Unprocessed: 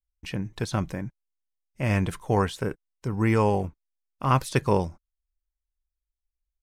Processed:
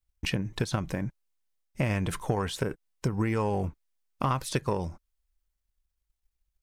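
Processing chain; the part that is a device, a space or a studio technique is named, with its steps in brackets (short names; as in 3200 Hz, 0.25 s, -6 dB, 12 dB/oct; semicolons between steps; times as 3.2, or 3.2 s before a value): drum-bus smash (transient shaper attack +8 dB, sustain +4 dB; compressor 6:1, threshold -26 dBFS, peak gain reduction 15 dB; soft clip -18 dBFS, distortion -20 dB); gain +2.5 dB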